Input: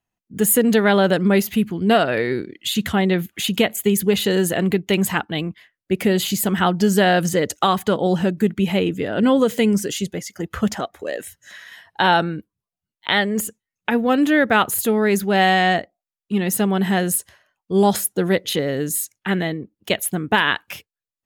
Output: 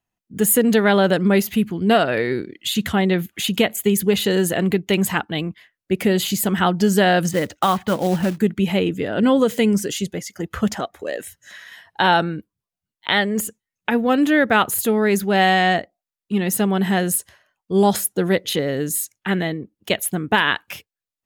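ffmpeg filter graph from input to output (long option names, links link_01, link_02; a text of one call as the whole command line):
ffmpeg -i in.wav -filter_complex "[0:a]asettb=1/sr,asplit=3[link_01][link_02][link_03];[link_01]atrim=end=7.314[link_04];[link_02]atrim=start=7.31:end=8.38,asetpts=PTS-STARTPTS,afade=type=in:duration=0.004:curve=qsin,afade=type=out:start_time=1.066:duration=0.004:curve=qsin,lowpass=3000,equalizer=frequency=420:width_type=o:width=0.22:gain=-10,acrusher=bits=4:mode=log:mix=0:aa=0.000001[link_05];[link_03]atrim=start=8.376[link_06];[link_04][link_05]acrossfade=duration=0.004:curve1=hsin:curve2=qsin[link_07];[link_07][link_06]acrossfade=duration=0.004:curve1=qsin:curve2=hsin" out.wav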